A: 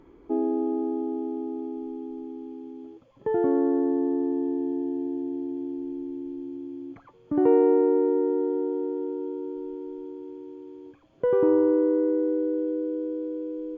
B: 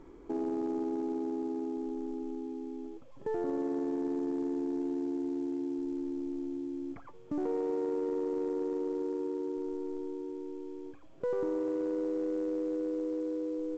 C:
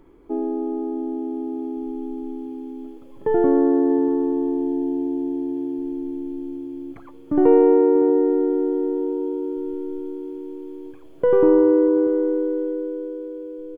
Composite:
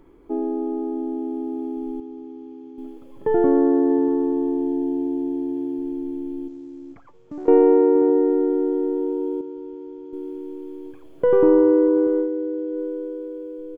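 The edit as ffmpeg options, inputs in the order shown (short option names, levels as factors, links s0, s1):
-filter_complex "[0:a]asplit=3[s0][s1][s2];[2:a]asplit=5[s3][s4][s5][s6][s7];[s3]atrim=end=2.002[s8];[s0]atrim=start=1.998:end=2.782[s9];[s4]atrim=start=2.778:end=6.482[s10];[1:a]atrim=start=6.478:end=7.482[s11];[s5]atrim=start=7.478:end=9.412[s12];[s1]atrim=start=9.408:end=10.132[s13];[s6]atrim=start=10.128:end=12.29[s14];[s2]atrim=start=12.19:end=12.8[s15];[s7]atrim=start=12.7[s16];[s8][s9]acrossfade=d=0.004:c1=hsin:c2=hsin[s17];[s17][s10]acrossfade=d=0.004:c1=hsin:c2=hsin[s18];[s18][s11]acrossfade=d=0.004:c1=hsin:c2=hsin[s19];[s19][s12]acrossfade=d=0.004:c1=hsin:c2=hsin[s20];[s20][s13]acrossfade=d=0.004:c1=hsin:c2=hsin[s21];[s21][s14]acrossfade=d=0.004:c1=hsin:c2=hsin[s22];[s22][s15]acrossfade=d=0.1:c1=tri:c2=tri[s23];[s23][s16]acrossfade=d=0.1:c1=tri:c2=tri"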